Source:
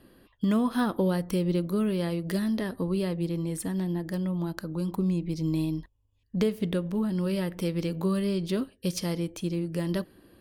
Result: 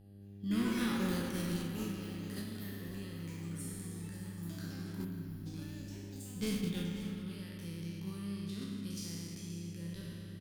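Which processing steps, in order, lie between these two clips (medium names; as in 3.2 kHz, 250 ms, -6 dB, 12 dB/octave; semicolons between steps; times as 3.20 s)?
spectral sustain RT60 2.19 s; ever faster or slower copies 216 ms, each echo +7 st, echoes 3, each echo -6 dB; time-frequency box 5.04–5.46 s, 310–9700 Hz -25 dB; gate -22 dBFS, range -11 dB; on a send: delay 537 ms -15.5 dB; on the sum: mains buzz 100 Hz, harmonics 8, -51 dBFS -2 dB/octave; in parallel at -10 dB: sine folder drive 3 dB, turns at -15 dBFS; on the sum: amplifier tone stack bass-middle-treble 6-0-2; spring tank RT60 2.9 s, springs 30/35 ms, chirp 65 ms, DRR 3.5 dB; trim +5 dB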